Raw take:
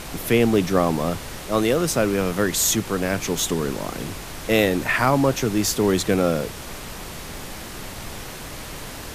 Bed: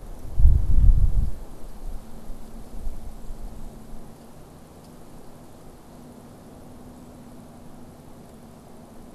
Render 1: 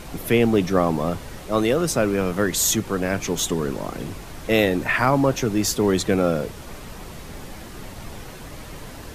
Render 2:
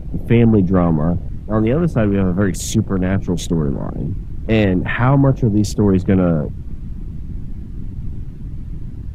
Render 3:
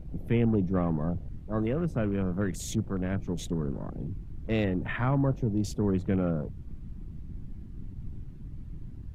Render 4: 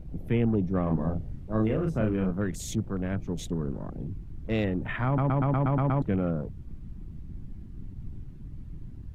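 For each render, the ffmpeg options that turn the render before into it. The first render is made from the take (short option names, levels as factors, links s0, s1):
-af "afftdn=nr=7:nf=-35"
-af "afwtdn=0.0316,bass=f=250:g=13,treble=f=4000:g=-6"
-af "volume=0.224"
-filter_complex "[0:a]asettb=1/sr,asplit=3[s0][s1][s2];[s0]atrim=end=0.834[s3];[s1]atrim=start=0.83:end=2.31,asetpts=PTS-STARTPTS,afade=t=in:d=0.004:c=qsin,afade=t=out:st=1.476:d=0.004:c=qsin,asplit=2[s4][s5];[s5]adelay=37,volume=0.708[s6];[s4][s6]amix=inputs=2:normalize=0,atrim=end_sample=65268[s7];[s2]atrim=start=2.306[s8];[s3][s7]acrossfade=d=0.004:c1=hsin:c2=qsin[s9];[s9][s8]acrossfade=d=0.004:c1=qsin:c2=hsin,asplit=9[s10][s11][s12][s13][s14][s15][s16][s17][s18];[s10]atrim=end=5.182[s19];[s11]atrim=start=5.058:end=5.182[s20];[s12]atrim=start=5.058:end=5.182[s21];[s13]atrim=start=5.058:end=5.182[s22];[s14]atrim=start=5.058:end=5.182[s23];[s15]atrim=start=5.058:end=5.182[s24];[s16]atrim=start=5.058:end=5.182[s25];[s17]atrim=start=5.058:end=5.182[s26];[s18]atrim=start=6.018[s27];[s19][s20]acrossfade=d=0.004:c1=hsin:c2=hsin[s28];[s28][s21]acrossfade=d=0.004:c1=hsin:c2=hsin[s29];[s29][s22]acrossfade=d=0.004:c1=hsin:c2=hsin[s30];[s30][s23]acrossfade=d=0.004:c1=hsin:c2=hsin[s31];[s31][s24]acrossfade=d=0.004:c1=hsin:c2=hsin[s32];[s32][s25]acrossfade=d=0.004:c1=hsin:c2=hsin[s33];[s33][s26]acrossfade=d=0.004:c1=hsin:c2=hsin[s34];[s34][s27]acrossfade=d=0.004:c1=hsin:c2=hsin"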